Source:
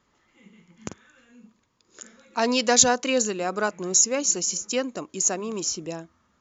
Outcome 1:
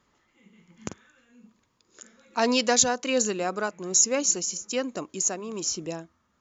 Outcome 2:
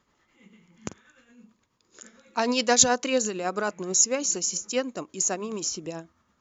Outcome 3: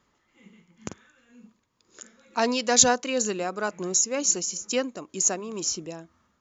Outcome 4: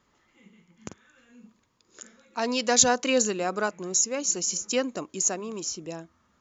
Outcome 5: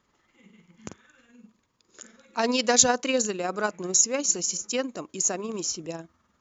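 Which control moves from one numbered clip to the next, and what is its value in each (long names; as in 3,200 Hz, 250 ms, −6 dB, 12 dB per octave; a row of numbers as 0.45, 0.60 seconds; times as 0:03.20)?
amplitude tremolo, speed: 1.2, 9.2, 2.1, 0.62, 20 Hertz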